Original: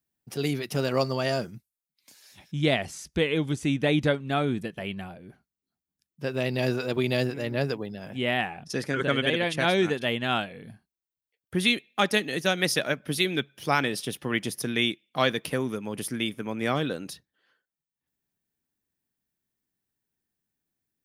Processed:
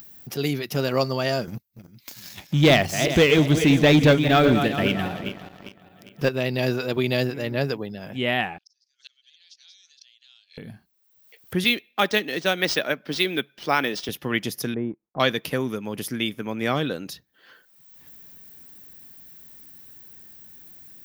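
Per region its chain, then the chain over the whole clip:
0:01.47–0:06.29: feedback delay that plays each chunk backwards 201 ms, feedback 57%, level −9.5 dB + leveller curve on the samples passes 2
0:08.58–0:10.58: flat-topped band-pass 5,200 Hz, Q 2.6 + gate with flip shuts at −42 dBFS, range −34 dB
0:11.64–0:14.09: high-pass filter 210 Hz + linearly interpolated sample-rate reduction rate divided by 3×
0:14.74–0:15.20: mu-law and A-law mismatch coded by A + Bessel low-pass filter 710 Hz, order 4
whole clip: parametric band 9,500 Hz −14.5 dB 0.63 octaves; upward compression, threshold −36 dBFS; high-shelf EQ 7,300 Hz +11.5 dB; level +2.5 dB

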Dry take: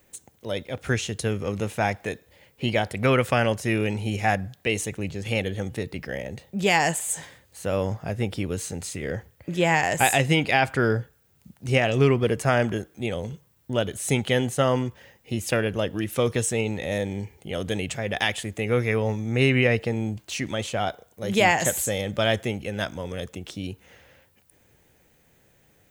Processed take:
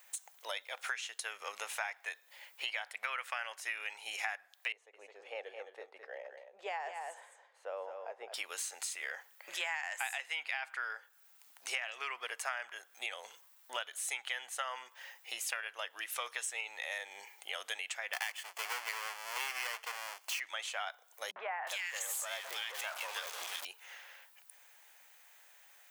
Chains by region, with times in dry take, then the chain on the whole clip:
0:04.72–0:08.34: resonant band-pass 460 Hz, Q 2 + single-tap delay 214 ms −8 dB
0:18.13–0:20.40: each half-wave held at its own peak + parametric band 1,400 Hz −4 dB + notch filter 3,800 Hz, Q 5.9
0:21.31–0:23.65: converter with a step at zero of −28 dBFS + downward compressor 4 to 1, threshold −24 dBFS + three-band delay without the direct sound lows, mids, highs 50/360 ms, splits 210/1,700 Hz
whole clip: high-pass filter 820 Hz 24 dB per octave; dynamic equaliser 1,800 Hz, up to +7 dB, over −38 dBFS, Q 0.74; downward compressor 6 to 1, threshold −40 dBFS; level +3 dB

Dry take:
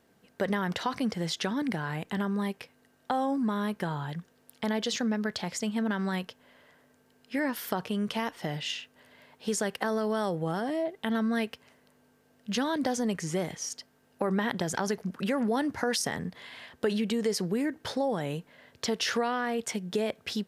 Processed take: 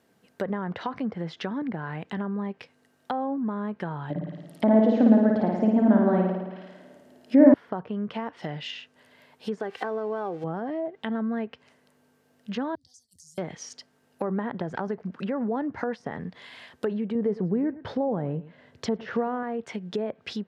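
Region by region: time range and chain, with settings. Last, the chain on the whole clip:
0:04.10–0:07.54: hollow resonant body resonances 290/590 Hz, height 15 dB, ringing for 25 ms + flutter between parallel walls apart 9.4 metres, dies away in 1.1 s
0:09.60–0:10.44: spike at every zero crossing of −29 dBFS + low-shelf EQ 160 Hz −9 dB + comb filter 2.6 ms, depth 42%
0:12.75–0:13.38: inverse Chebyshev band-stop filter 200–2,600 Hz + downward compressor, threshold −48 dBFS + saturating transformer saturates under 1,200 Hz
0:17.15–0:19.43: spectral tilt −2 dB per octave + single-tap delay 108 ms −17 dB
whole clip: treble cut that deepens with the level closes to 1,200 Hz, closed at −26 dBFS; high-pass filter 81 Hz

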